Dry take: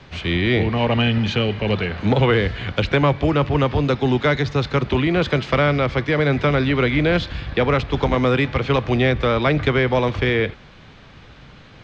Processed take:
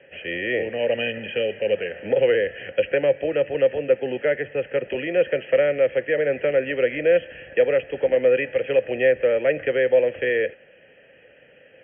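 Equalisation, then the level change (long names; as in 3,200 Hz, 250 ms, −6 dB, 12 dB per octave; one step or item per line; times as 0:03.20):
formant filter e
linear-phase brick-wall low-pass 3,300 Hz
+7.0 dB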